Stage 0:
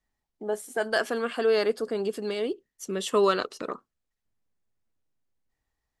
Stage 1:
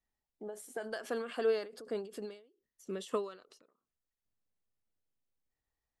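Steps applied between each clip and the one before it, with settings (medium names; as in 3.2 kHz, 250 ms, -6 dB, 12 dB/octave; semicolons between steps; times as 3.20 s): peaking EQ 520 Hz +2.5 dB; endings held to a fixed fall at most 120 dB/s; trim -8 dB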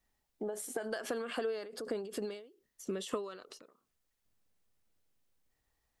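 compression 6:1, threshold -43 dBFS, peak gain reduction 16.5 dB; trim +9 dB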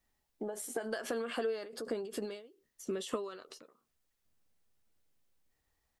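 doubling 13 ms -11 dB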